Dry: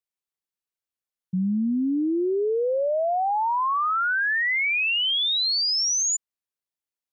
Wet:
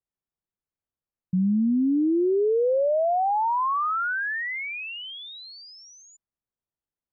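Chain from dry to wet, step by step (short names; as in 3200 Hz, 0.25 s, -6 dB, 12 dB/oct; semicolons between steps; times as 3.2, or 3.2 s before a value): LPF 1400 Hz 12 dB/oct; low shelf 230 Hz +11.5 dB; limiter -18.5 dBFS, peak gain reduction 5 dB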